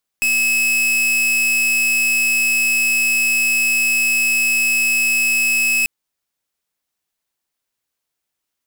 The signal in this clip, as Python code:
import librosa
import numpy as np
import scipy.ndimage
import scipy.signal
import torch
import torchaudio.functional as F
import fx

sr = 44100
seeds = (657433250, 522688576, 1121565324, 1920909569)

y = fx.pulse(sr, length_s=5.64, hz=2580.0, level_db=-16.5, duty_pct=44)